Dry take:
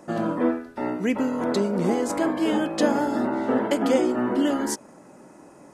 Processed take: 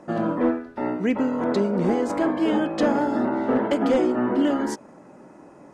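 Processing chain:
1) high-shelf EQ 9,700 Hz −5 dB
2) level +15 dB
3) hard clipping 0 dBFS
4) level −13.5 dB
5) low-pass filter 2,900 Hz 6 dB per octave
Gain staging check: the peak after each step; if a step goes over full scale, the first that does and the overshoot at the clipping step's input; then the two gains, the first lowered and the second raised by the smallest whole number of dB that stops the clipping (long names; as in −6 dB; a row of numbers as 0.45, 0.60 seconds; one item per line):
−7.0, +8.0, 0.0, −13.5, −13.5 dBFS
step 2, 8.0 dB
step 2 +7 dB, step 4 −5.5 dB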